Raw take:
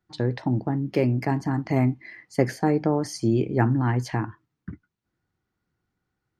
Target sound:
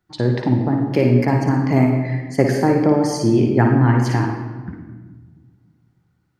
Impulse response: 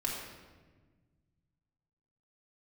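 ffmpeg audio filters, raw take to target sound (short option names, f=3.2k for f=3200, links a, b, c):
-filter_complex "[0:a]asplit=2[a][b];[1:a]atrim=start_sample=2205,lowshelf=f=61:g=-11,adelay=55[c];[b][c]afir=irnorm=-1:irlink=0,volume=-6dB[d];[a][d]amix=inputs=2:normalize=0,volume=5dB"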